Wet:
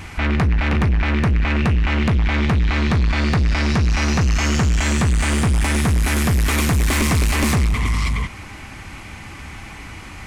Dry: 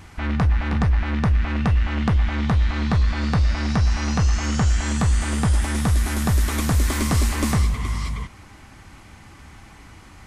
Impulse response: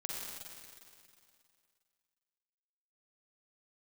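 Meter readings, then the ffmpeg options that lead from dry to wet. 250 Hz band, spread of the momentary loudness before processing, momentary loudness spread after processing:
+3.5 dB, 1 LU, 18 LU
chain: -af "asoftclip=type=tanh:threshold=-22.5dB,equalizer=frequency=2400:width=2.3:gain=6.5,volume=8.5dB"

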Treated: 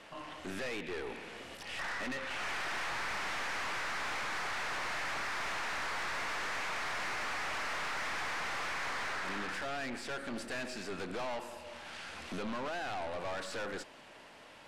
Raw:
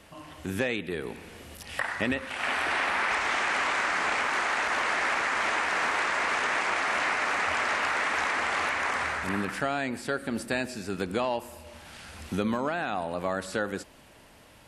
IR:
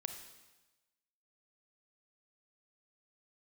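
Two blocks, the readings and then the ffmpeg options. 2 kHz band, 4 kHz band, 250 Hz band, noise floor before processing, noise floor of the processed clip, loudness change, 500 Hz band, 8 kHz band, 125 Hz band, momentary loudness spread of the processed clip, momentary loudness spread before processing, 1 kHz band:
−9.5 dB, −6.0 dB, −11.0 dB, −54 dBFS, −54 dBFS, −9.5 dB, −9.0 dB, −6.5 dB, −11.0 dB, 9 LU, 10 LU, −9.5 dB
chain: -af "highpass=frequency=480:poles=1,aeval=exprs='(tanh(112*val(0)+0.5)-tanh(0.5))/112':channel_layout=same,adynamicsmooth=sensitivity=7:basefreq=6100,volume=5dB"

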